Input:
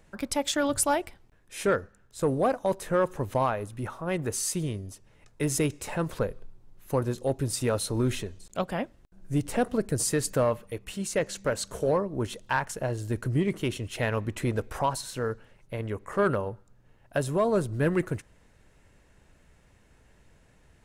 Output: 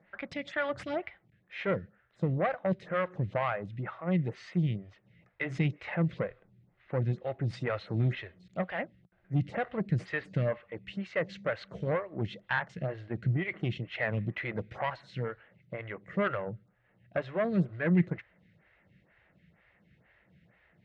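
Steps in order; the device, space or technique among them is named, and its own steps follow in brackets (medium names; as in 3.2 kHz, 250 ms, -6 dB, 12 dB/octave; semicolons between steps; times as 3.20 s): vibe pedal into a guitar amplifier (lamp-driven phase shifter 2.1 Hz; valve stage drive 20 dB, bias 0.35; cabinet simulation 91–3500 Hz, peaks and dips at 120 Hz +4 dB, 180 Hz +9 dB, 260 Hz -8 dB, 420 Hz -7 dB, 960 Hz -7 dB, 2 kHz +9 dB); trim +1 dB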